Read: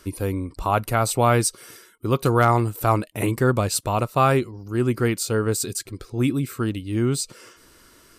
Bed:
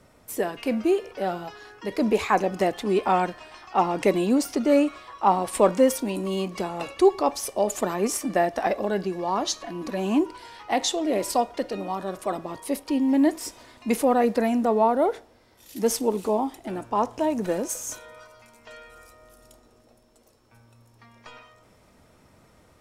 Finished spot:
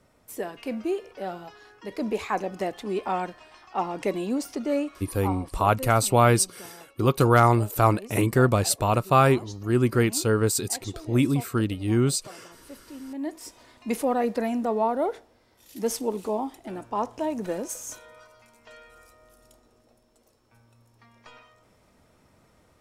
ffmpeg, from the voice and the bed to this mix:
-filter_complex "[0:a]adelay=4950,volume=0dB[a];[1:a]volume=7.5dB,afade=t=out:st=4.66:d=0.88:silence=0.266073,afade=t=in:st=13.1:d=0.58:silence=0.211349[b];[a][b]amix=inputs=2:normalize=0"

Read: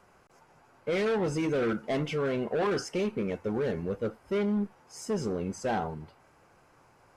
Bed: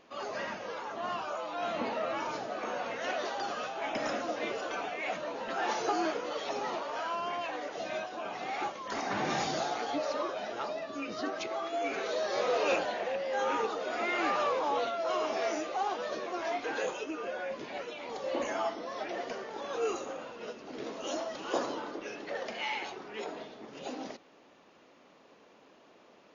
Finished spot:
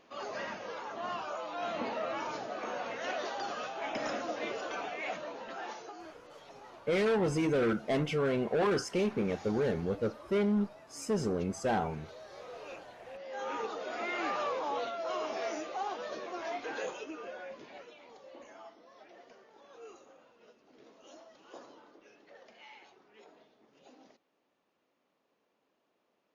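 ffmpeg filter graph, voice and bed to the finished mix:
-filter_complex "[0:a]adelay=6000,volume=-0.5dB[a];[1:a]volume=11.5dB,afade=t=out:st=5.04:d=0.88:silence=0.16788,afade=t=in:st=12.99:d=0.76:silence=0.211349,afade=t=out:st=16.85:d=1.47:silence=0.188365[b];[a][b]amix=inputs=2:normalize=0"

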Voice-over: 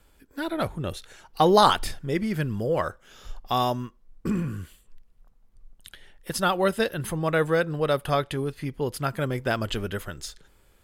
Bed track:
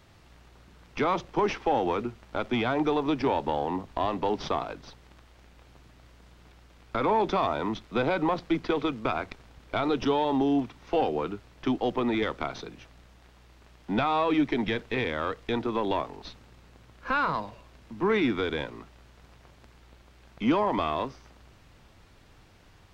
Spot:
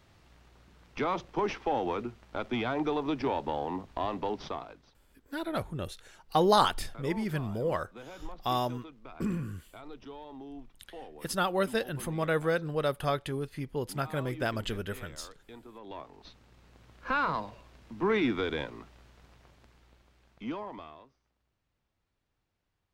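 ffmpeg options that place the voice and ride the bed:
-filter_complex "[0:a]adelay=4950,volume=-5.5dB[a];[1:a]volume=13.5dB,afade=t=out:st=4.17:d=0.82:silence=0.158489,afade=t=in:st=15.8:d=1.13:silence=0.125893,afade=t=out:st=18.96:d=2.08:silence=0.0707946[b];[a][b]amix=inputs=2:normalize=0"

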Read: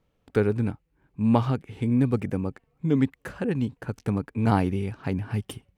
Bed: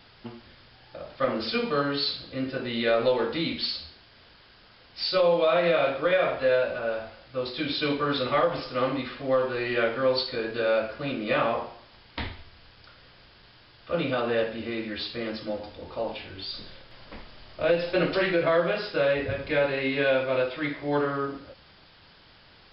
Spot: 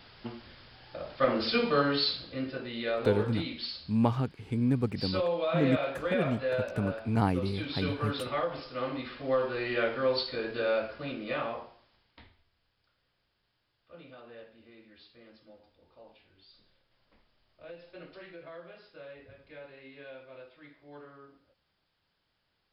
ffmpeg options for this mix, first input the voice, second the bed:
-filter_complex "[0:a]adelay=2700,volume=-5dB[a];[1:a]volume=4dB,afade=t=out:st=1.93:d=0.77:silence=0.398107,afade=t=in:st=8.83:d=0.45:silence=0.630957,afade=t=out:st=10.64:d=1.6:silence=0.105925[b];[a][b]amix=inputs=2:normalize=0"

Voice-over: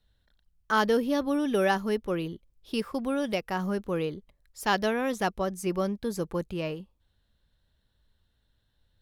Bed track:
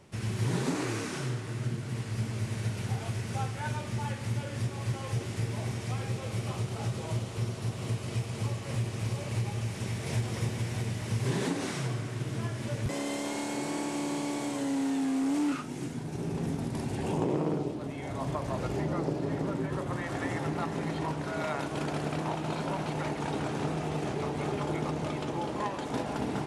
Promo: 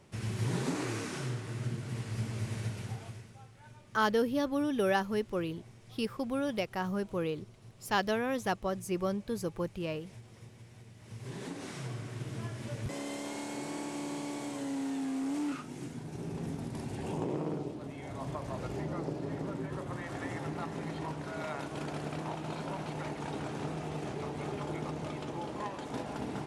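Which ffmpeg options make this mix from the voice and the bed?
-filter_complex "[0:a]adelay=3250,volume=-4dB[a];[1:a]volume=12dB,afade=t=out:st=2.56:d=0.78:silence=0.133352,afade=t=in:st=10.94:d=1.18:silence=0.177828[b];[a][b]amix=inputs=2:normalize=0"

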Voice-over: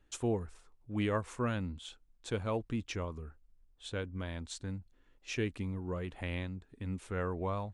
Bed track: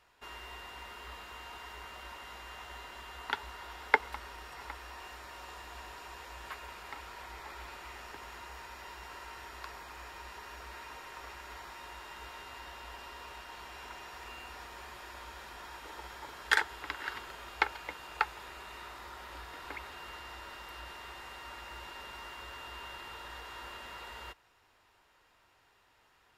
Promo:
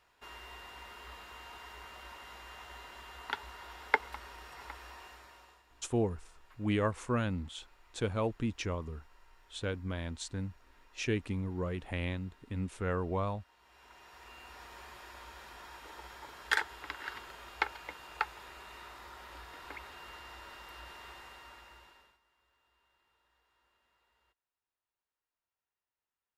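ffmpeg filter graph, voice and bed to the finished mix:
-filter_complex "[0:a]adelay=5700,volume=2dB[a];[1:a]volume=13.5dB,afade=t=out:st=4.88:d=0.75:silence=0.149624,afade=t=in:st=13.59:d=1.14:silence=0.158489,afade=t=out:st=21.1:d=1.09:silence=0.0446684[b];[a][b]amix=inputs=2:normalize=0"

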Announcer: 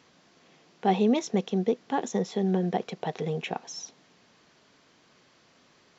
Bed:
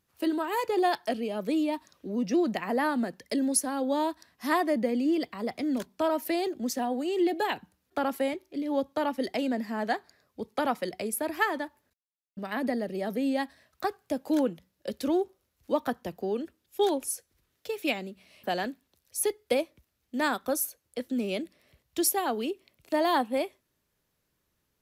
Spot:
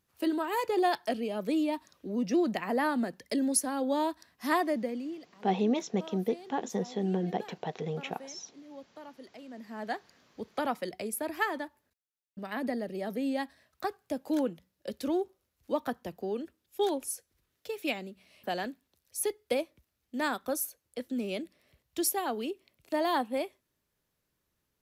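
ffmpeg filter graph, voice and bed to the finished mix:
-filter_complex "[0:a]adelay=4600,volume=-4.5dB[a];[1:a]volume=14dB,afade=t=out:st=4.58:d=0.62:silence=0.133352,afade=t=in:st=9.48:d=0.62:silence=0.16788[b];[a][b]amix=inputs=2:normalize=0"

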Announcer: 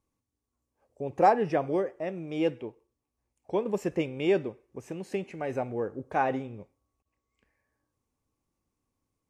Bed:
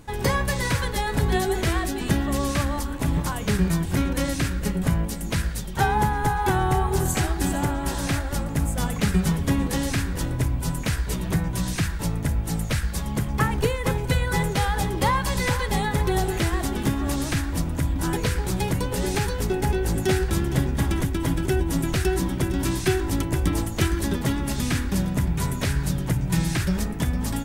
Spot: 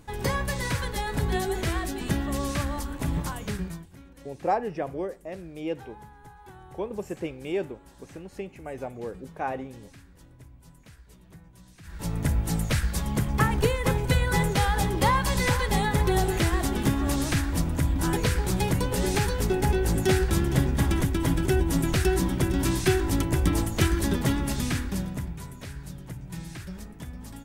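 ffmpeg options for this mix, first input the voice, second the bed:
-filter_complex "[0:a]adelay=3250,volume=-4dB[a];[1:a]volume=21dB,afade=t=out:st=3.23:d=0.67:silence=0.0841395,afade=t=in:st=11.83:d=0.42:silence=0.0530884,afade=t=out:st=24.31:d=1.14:silence=0.188365[b];[a][b]amix=inputs=2:normalize=0"

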